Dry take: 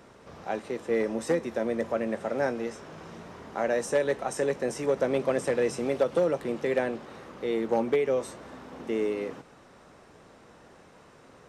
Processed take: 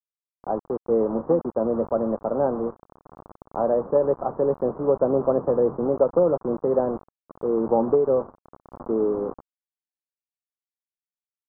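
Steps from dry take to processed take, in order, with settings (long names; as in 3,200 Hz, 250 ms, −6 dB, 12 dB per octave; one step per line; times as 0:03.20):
bit reduction 6 bits
Butterworth low-pass 1,200 Hz 48 dB per octave
level +5.5 dB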